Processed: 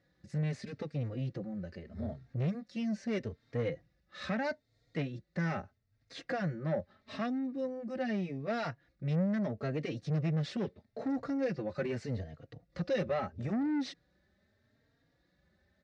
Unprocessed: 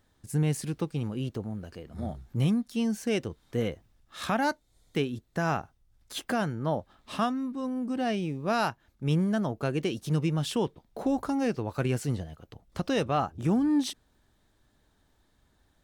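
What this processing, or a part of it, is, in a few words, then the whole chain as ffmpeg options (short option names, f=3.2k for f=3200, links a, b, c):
barber-pole flanger into a guitar amplifier: -filter_complex "[0:a]bass=f=250:g=5,treble=f=4k:g=13,asplit=2[a][b];[b]adelay=3.7,afreqshift=0.79[c];[a][c]amix=inputs=2:normalize=1,asoftclip=type=tanh:threshold=-26.5dB,highpass=88,equalizer=f=170:t=q:w=4:g=3,equalizer=f=550:t=q:w=4:g=9,equalizer=f=950:t=q:w=4:g=-8,equalizer=f=1.9k:t=q:w=4:g=9,equalizer=f=3.2k:t=q:w=4:g=-10,lowpass=f=4.1k:w=0.5412,lowpass=f=4.1k:w=1.3066,volume=-3dB"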